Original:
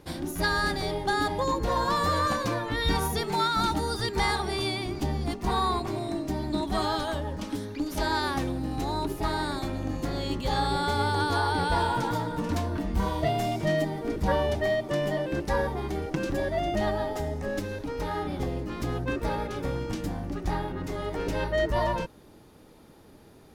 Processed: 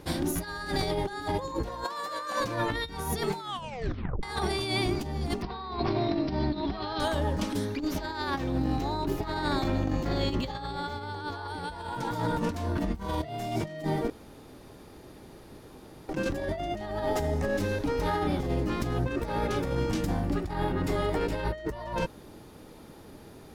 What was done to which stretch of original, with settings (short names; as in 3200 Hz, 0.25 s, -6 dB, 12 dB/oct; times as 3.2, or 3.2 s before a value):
1.84–2.4 HPF 430 Hz
3.4 tape stop 0.83 s
5.42–7 careless resampling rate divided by 4×, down none, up filtered
7.77–11.48 bell 10000 Hz -11.5 dB
14.1–16.09 room tone
20.21–21.53 notch 6100 Hz, Q 8.5
whole clip: negative-ratio compressor -31 dBFS, ratio -0.5; gain +1.5 dB